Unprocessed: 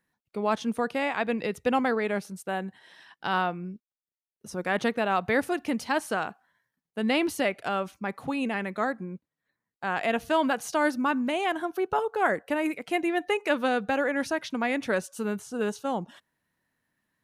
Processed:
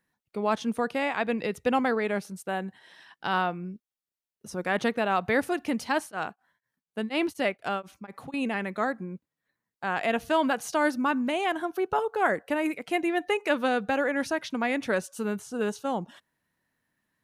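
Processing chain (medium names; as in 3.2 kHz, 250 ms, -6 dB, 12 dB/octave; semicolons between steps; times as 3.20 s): 6.00–8.34 s: tremolo of two beating tones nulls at 4.1 Hz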